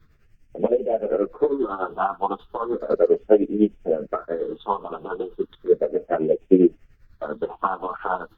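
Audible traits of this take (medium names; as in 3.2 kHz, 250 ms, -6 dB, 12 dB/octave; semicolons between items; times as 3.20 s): phasing stages 6, 0.35 Hz, lowest notch 540–1100 Hz; tremolo triangle 10 Hz, depth 85%; a shimmering, thickened sound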